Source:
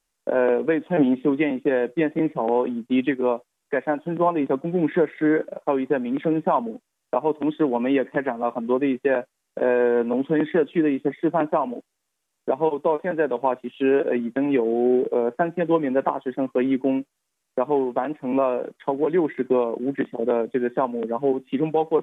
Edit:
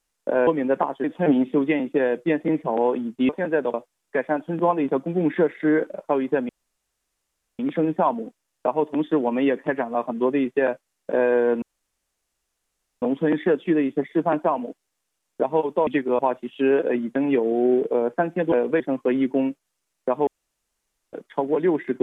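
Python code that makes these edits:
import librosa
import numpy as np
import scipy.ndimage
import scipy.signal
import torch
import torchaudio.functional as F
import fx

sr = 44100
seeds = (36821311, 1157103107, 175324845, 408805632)

y = fx.edit(x, sr, fx.swap(start_s=0.47, length_s=0.28, other_s=15.73, other_length_s=0.57),
    fx.swap(start_s=3.0, length_s=0.32, other_s=12.95, other_length_s=0.45),
    fx.insert_room_tone(at_s=6.07, length_s=1.1),
    fx.insert_room_tone(at_s=10.1, length_s=1.4),
    fx.room_tone_fill(start_s=17.77, length_s=0.86), tone=tone)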